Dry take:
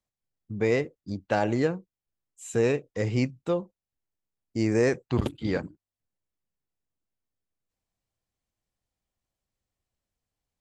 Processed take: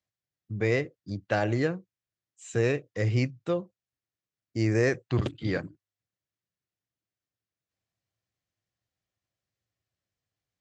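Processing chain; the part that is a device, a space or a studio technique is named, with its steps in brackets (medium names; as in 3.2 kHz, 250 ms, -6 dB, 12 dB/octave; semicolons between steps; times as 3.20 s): car door speaker (cabinet simulation 92–7000 Hz, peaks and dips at 110 Hz +6 dB, 230 Hz -6 dB, 450 Hz -3 dB, 890 Hz -7 dB, 1.8 kHz +3 dB)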